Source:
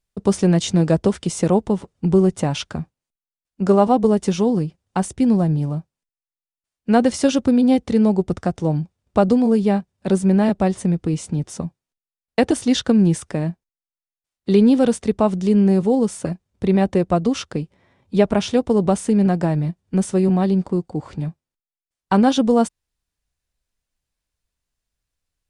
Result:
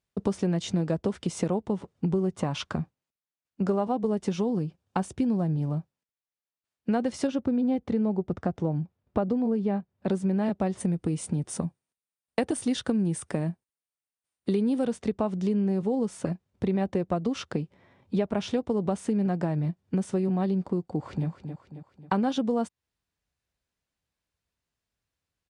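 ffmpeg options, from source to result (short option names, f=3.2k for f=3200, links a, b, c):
-filter_complex "[0:a]asettb=1/sr,asplit=3[a][b][c];[a]atrim=end=2.354[d];[b]atrim=start=2.35:end=2.75,asetpts=PTS-STARTPTS,afade=t=in:d=0.004:c=qsin,afade=t=out:st=0.396:d=0.004:c=qsin,equalizer=f=1.1k:w=5.4:g=9[e];[c]atrim=start=2.746[f];[d][e]acrossfade=d=0.004:c1=hsin:c2=qsin[g];[g][f]acrossfade=d=0.004:c1=qsin:c2=hsin,asettb=1/sr,asplit=3[h][i][j];[h]atrim=end=4.434[k];[i]atrim=start=4.43:end=5.37,asetpts=PTS-STARTPTS,afade=t=in:d=0.004:c=qsin,afade=t=out:st=0.936:d=0.004:c=qsin,bandreject=f=2k:w=12[l];[j]atrim=start=5.366[m];[k][l]acrossfade=d=0.004:c1=hsin:c2=qsin[n];[n][m]acrossfade=d=0.004:c1=qsin:c2=hsin,asettb=1/sr,asplit=3[o][p][q];[o]atrim=end=7.274[r];[p]atrim=start=7.27:end=10.08,asetpts=PTS-STARTPTS,afade=t=in:d=0.004:c=qsin,afade=t=out:st=2.806:d=0.004:c=qsin,highshelf=f=3.5k:g=-11.5[s];[q]atrim=start=10.076[t];[r][s]acrossfade=d=0.004:c1=hsin:c2=qsin[u];[u][t]acrossfade=d=0.004:c1=qsin:c2=hsin,asettb=1/sr,asplit=3[v][w][x];[v]atrim=end=10.804[y];[w]atrim=start=10.8:end=14.87,asetpts=PTS-STARTPTS,afade=t=in:d=0.004:c=qsin,afade=t=out:st=4.066:d=0.004:c=qsin,equalizer=f=9.1k:t=o:w=0.29:g=14.5[z];[x]atrim=start=14.866[aa];[y][z]acrossfade=d=0.004:c1=hsin:c2=qsin[ab];[ab][aa]acrossfade=d=0.004:c1=qsin:c2=hsin,asplit=2[ac][ad];[ad]afade=t=in:st=20.87:d=0.01,afade=t=out:st=21.28:d=0.01,aecho=0:1:270|540|810|1080|1350:0.266073|0.133036|0.0665181|0.0332591|0.0166295[ae];[ac][ae]amix=inputs=2:normalize=0,highpass=77,highshelf=f=5.7k:g=-9.5,acompressor=threshold=-25dB:ratio=4"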